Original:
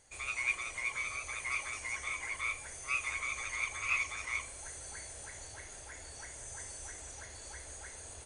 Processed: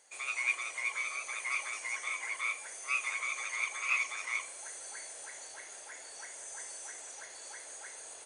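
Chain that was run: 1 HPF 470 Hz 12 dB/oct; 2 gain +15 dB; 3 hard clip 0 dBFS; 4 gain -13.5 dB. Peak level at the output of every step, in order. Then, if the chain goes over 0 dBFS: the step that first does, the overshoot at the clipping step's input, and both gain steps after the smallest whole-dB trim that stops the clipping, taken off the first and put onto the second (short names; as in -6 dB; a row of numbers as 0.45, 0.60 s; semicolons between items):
-19.5, -4.5, -4.5, -18.0 dBFS; no overload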